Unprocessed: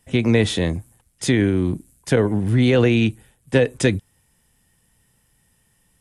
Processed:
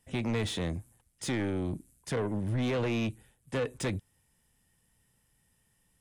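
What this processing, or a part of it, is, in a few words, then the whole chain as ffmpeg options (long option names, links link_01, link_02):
saturation between pre-emphasis and de-emphasis: -af "highshelf=frequency=4200:gain=8,asoftclip=type=tanh:threshold=-17.5dB,highshelf=frequency=4200:gain=-8,volume=-8.5dB"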